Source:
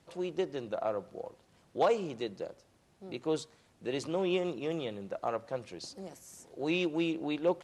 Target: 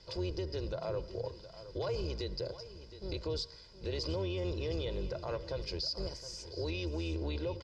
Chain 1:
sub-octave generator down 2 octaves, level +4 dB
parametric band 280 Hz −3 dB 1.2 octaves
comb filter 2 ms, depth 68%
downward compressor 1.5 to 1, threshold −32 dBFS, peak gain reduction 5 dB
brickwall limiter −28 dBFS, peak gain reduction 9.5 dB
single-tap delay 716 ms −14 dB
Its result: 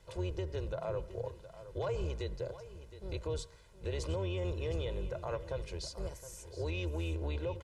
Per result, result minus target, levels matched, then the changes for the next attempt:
4,000 Hz band −7.0 dB; 250 Hz band −2.0 dB
add after downward compressor: low-pass with resonance 4,900 Hz, resonance Q 15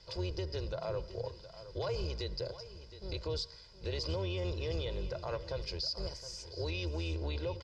250 Hz band −3.0 dB
change: parametric band 280 Hz +3.5 dB 1.2 octaves

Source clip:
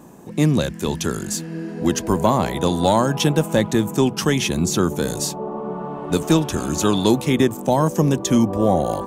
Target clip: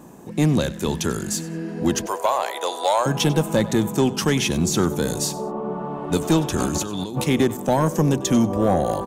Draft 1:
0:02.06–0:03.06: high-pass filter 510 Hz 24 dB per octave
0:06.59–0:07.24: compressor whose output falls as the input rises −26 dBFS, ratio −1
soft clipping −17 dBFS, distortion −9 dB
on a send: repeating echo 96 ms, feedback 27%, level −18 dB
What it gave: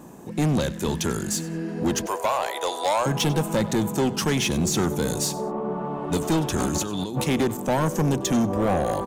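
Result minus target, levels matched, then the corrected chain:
soft clipping: distortion +9 dB
0:02.06–0:03.06: high-pass filter 510 Hz 24 dB per octave
0:06.59–0:07.24: compressor whose output falls as the input rises −26 dBFS, ratio −1
soft clipping −9 dBFS, distortion −18 dB
on a send: repeating echo 96 ms, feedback 27%, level −18 dB

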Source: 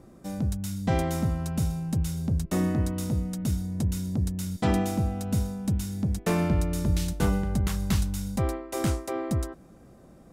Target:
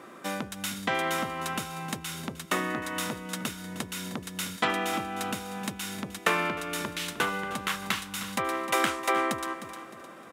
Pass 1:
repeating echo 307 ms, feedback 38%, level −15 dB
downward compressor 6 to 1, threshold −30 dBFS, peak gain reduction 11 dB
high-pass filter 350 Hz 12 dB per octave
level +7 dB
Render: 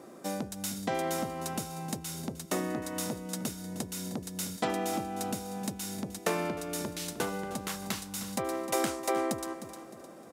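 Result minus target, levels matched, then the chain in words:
2,000 Hz band −7.0 dB
repeating echo 307 ms, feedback 38%, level −15 dB
downward compressor 6 to 1, threshold −30 dBFS, peak gain reduction 11 dB
high-pass filter 350 Hz 12 dB per octave
flat-topped bell 1,900 Hz +10.5 dB 2.1 octaves
level +7 dB

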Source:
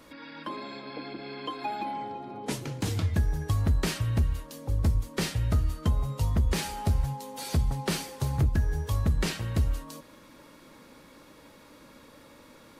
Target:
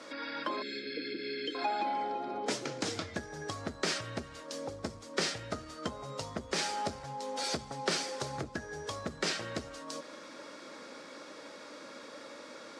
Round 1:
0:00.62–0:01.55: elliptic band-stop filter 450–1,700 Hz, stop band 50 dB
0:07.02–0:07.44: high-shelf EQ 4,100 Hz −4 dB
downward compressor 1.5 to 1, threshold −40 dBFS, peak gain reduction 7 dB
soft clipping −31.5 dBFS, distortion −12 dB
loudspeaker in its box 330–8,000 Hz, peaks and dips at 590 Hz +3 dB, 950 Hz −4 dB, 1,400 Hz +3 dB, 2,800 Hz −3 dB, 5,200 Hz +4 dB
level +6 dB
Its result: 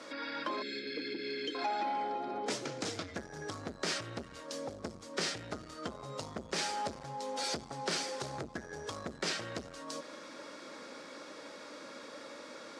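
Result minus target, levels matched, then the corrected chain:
soft clipping: distortion +17 dB
0:00.62–0:01.55: elliptic band-stop filter 450–1,700 Hz, stop band 50 dB
0:07.02–0:07.44: high-shelf EQ 4,100 Hz −4 dB
downward compressor 1.5 to 1, threshold −40 dBFS, peak gain reduction 7 dB
soft clipping −20.5 dBFS, distortion −29 dB
loudspeaker in its box 330–8,000 Hz, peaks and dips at 590 Hz +3 dB, 950 Hz −4 dB, 1,400 Hz +3 dB, 2,800 Hz −3 dB, 5,200 Hz +4 dB
level +6 dB

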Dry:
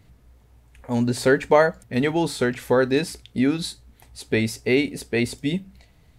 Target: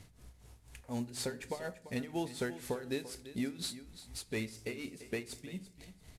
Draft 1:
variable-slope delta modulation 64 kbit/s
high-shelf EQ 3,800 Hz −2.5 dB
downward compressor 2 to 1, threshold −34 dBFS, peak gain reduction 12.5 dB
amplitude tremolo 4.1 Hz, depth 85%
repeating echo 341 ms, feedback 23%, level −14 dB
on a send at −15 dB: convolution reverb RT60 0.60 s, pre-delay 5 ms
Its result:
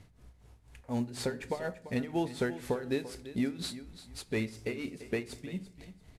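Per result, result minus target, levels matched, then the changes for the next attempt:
8,000 Hz band −6.5 dB; downward compressor: peak gain reduction −5 dB
change: high-shelf EQ 3,800 Hz +7 dB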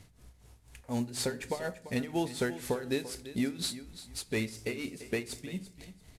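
downward compressor: peak gain reduction −5 dB
change: downward compressor 2 to 1, threshold −44 dBFS, peak gain reduction 17.5 dB

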